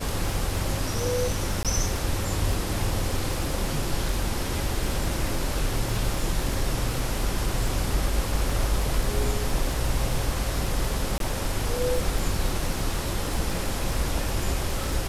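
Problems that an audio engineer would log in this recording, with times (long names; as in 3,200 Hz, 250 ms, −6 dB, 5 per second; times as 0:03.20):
surface crackle 42 per second −29 dBFS
0:01.63–0:01.65: drop-out 17 ms
0:11.18–0:11.20: drop-out 22 ms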